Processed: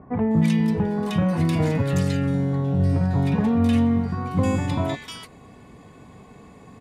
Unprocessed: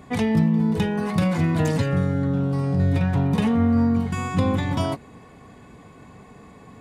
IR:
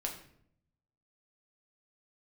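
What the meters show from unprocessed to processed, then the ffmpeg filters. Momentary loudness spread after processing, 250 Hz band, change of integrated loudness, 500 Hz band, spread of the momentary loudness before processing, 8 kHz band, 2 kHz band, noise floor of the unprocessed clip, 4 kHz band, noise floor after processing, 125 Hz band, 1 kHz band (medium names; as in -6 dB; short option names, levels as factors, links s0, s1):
6 LU, 0.0 dB, 0.0 dB, 0.0 dB, 5 LU, no reading, -2.0 dB, -47 dBFS, -0.5 dB, -47 dBFS, 0.0 dB, -1.0 dB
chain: -filter_complex "[0:a]acrossover=split=1500[s0][s1];[s1]adelay=310[s2];[s0][s2]amix=inputs=2:normalize=0"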